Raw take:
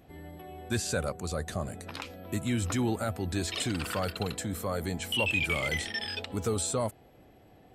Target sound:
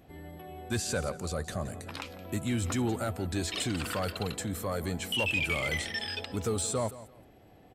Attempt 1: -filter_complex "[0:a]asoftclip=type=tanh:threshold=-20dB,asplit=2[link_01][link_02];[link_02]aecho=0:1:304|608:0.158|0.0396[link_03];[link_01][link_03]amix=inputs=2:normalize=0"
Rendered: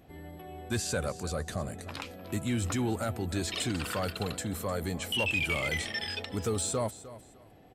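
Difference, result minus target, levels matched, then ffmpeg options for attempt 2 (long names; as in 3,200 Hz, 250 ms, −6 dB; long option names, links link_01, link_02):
echo 134 ms late
-filter_complex "[0:a]asoftclip=type=tanh:threshold=-20dB,asplit=2[link_01][link_02];[link_02]aecho=0:1:170|340:0.158|0.0396[link_03];[link_01][link_03]amix=inputs=2:normalize=0"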